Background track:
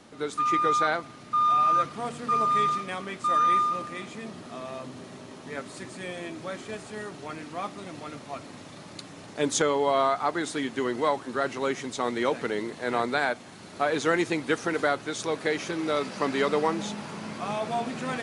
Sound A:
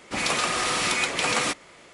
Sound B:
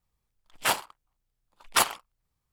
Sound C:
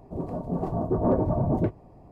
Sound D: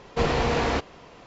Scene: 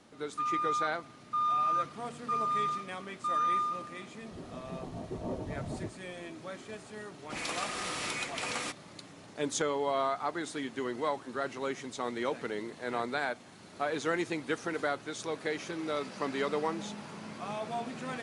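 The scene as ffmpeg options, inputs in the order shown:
ffmpeg -i bed.wav -i cue0.wav -i cue1.wav -i cue2.wav -filter_complex "[0:a]volume=-7dB[link_01];[3:a]atrim=end=2.11,asetpts=PTS-STARTPTS,volume=-14.5dB,afade=type=in:duration=0.004:curve=hsin,afade=type=out:start_time=2.106:duration=0.004:curve=hsin,adelay=4200[link_02];[1:a]atrim=end=1.93,asetpts=PTS-STARTPTS,volume=-11.5dB,afade=type=in:duration=0.004:curve=hsin,afade=type=out:start_time=1.926:duration=0.004:curve=hsin,adelay=7190[link_03];[link_01][link_02][link_03]amix=inputs=3:normalize=0" out.wav

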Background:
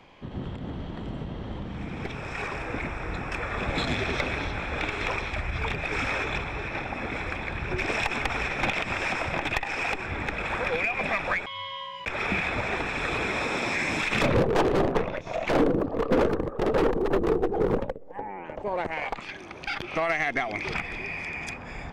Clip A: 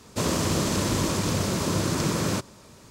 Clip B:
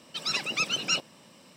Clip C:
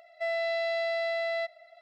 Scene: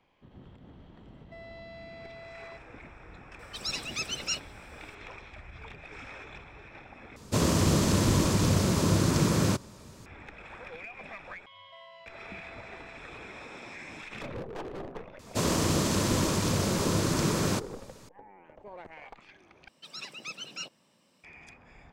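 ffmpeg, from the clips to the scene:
ffmpeg -i bed.wav -i cue0.wav -i cue1.wav -i cue2.wav -filter_complex "[3:a]asplit=2[link_01][link_02];[2:a]asplit=2[link_03][link_04];[1:a]asplit=2[link_05][link_06];[0:a]volume=-16.5dB[link_07];[link_01]alimiter=level_in=4dB:limit=-24dB:level=0:latency=1:release=71,volume=-4dB[link_08];[link_03]bass=frequency=250:gain=4,treble=frequency=4000:gain=8[link_09];[link_05]lowshelf=frequency=220:gain=6[link_10];[link_02]acompressor=threshold=-39dB:ratio=6:attack=3.2:release=140:knee=1:detection=peak[link_11];[link_07]asplit=3[link_12][link_13][link_14];[link_12]atrim=end=7.164[link_15];[link_10]atrim=end=2.9,asetpts=PTS-STARTPTS,volume=-2dB[link_16];[link_13]atrim=start=10.056:end=19.684[link_17];[link_04]atrim=end=1.56,asetpts=PTS-STARTPTS,volume=-12.5dB[link_18];[link_14]atrim=start=21.236[link_19];[link_08]atrim=end=1.81,asetpts=PTS-STARTPTS,volume=-14dB,afade=type=in:duration=0.004:curve=hsin,afade=type=out:start_time=1.806:duration=0.004:curve=hsin,adelay=1110[link_20];[link_09]atrim=end=1.56,asetpts=PTS-STARTPTS,volume=-9dB,afade=type=in:duration=0.004:curve=hsin,afade=type=out:start_time=1.556:duration=0.004:curve=hsin,adelay=3390[link_21];[link_11]atrim=end=1.81,asetpts=PTS-STARTPTS,volume=-12.5dB,afade=type=in:duration=0.004:curve=hsin,afade=type=out:start_time=1.806:duration=0.004:curve=hsin,adelay=11520[link_22];[link_06]atrim=end=2.9,asetpts=PTS-STARTPTS,volume=-2dB,afade=type=in:duration=0.004:curve=hsin,afade=type=out:start_time=2.896:duration=0.004:curve=hsin,adelay=15190[link_23];[link_15][link_16]acrossfade=duration=0.004:curve1=hsin:curve2=hsin[link_24];[link_24][link_17]acrossfade=duration=0.004:curve1=hsin:curve2=hsin[link_25];[link_25][link_18]acrossfade=duration=0.004:curve1=hsin:curve2=hsin[link_26];[link_26][link_19]acrossfade=duration=0.004:curve1=hsin:curve2=hsin[link_27];[link_27][link_20][link_21][link_22][link_23]amix=inputs=5:normalize=0" out.wav

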